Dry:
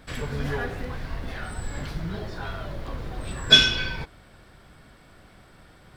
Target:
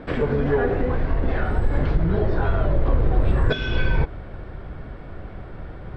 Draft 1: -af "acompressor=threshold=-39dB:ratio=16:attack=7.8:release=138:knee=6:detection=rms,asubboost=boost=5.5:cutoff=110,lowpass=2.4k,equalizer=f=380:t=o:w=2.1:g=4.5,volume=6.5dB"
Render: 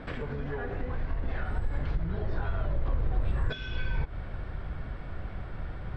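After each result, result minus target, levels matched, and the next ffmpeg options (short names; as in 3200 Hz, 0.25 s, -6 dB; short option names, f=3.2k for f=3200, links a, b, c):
compressor: peak gain reduction +10 dB; 500 Hz band -3.5 dB
-af "acompressor=threshold=-28.5dB:ratio=16:attack=7.8:release=138:knee=6:detection=rms,asubboost=boost=5.5:cutoff=110,lowpass=2.4k,equalizer=f=380:t=o:w=2.1:g=4.5,volume=6.5dB"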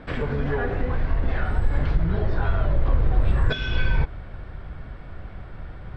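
500 Hz band -4.5 dB
-af "acompressor=threshold=-28.5dB:ratio=16:attack=7.8:release=138:knee=6:detection=rms,asubboost=boost=5.5:cutoff=110,lowpass=2.4k,equalizer=f=380:t=o:w=2.1:g=12,volume=6.5dB"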